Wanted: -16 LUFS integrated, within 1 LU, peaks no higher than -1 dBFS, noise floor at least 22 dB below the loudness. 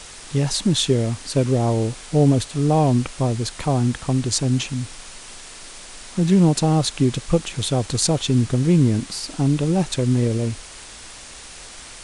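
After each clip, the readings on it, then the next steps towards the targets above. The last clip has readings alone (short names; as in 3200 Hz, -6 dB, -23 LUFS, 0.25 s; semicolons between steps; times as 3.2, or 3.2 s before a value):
noise floor -40 dBFS; noise floor target -43 dBFS; loudness -20.5 LUFS; peak -4.5 dBFS; loudness target -16.0 LUFS
-> denoiser 6 dB, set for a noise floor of -40 dBFS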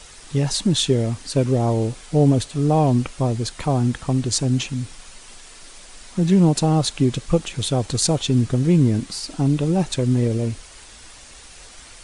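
noise floor -44 dBFS; loudness -20.5 LUFS; peak -4.5 dBFS; loudness target -16.0 LUFS
-> gain +4.5 dB; limiter -1 dBFS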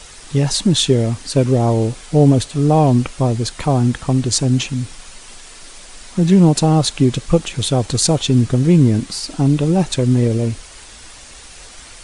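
loudness -16.0 LUFS; peak -1.0 dBFS; noise floor -39 dBFS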